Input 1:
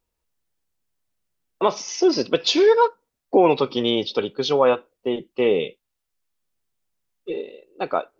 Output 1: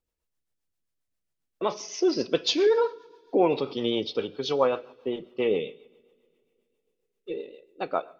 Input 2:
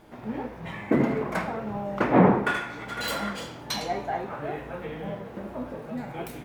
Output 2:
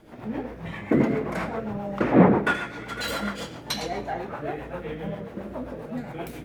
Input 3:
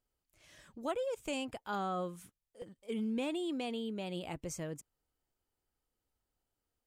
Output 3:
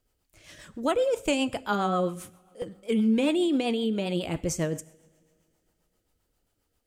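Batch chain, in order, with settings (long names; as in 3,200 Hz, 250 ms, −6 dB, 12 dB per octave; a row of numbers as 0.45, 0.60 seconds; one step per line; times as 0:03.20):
coupled-rooms reverb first 0.7 s, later 2.9 s, from −19 dB, DRR 14 dB
rotating-speaker cabinet horn 7.5 Hz
loudness normalisation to −27 LKFS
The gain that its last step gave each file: −4.0, +3.0, +13.0 decibels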